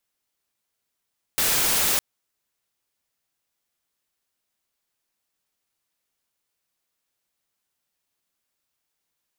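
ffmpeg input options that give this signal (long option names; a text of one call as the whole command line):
ffmpeg -f lavfi -i "anoisesrc=color=white:amplitude=0.146:duration=0.61:sample_rate=44100:seed=1" out.wav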